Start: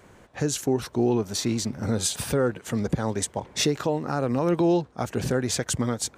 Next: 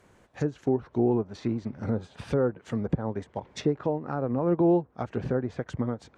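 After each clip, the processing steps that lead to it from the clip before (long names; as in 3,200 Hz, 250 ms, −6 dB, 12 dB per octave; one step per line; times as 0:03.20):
treble cut that deepens with the level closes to 1,100 Hz, closed at −21.5 dBFS
expander for the loud parts 1.5 to 1, over −33 dBFS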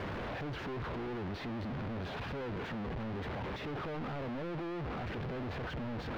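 sign of each sample alone
high-frequency loss of the air 330 metres
level −9 dB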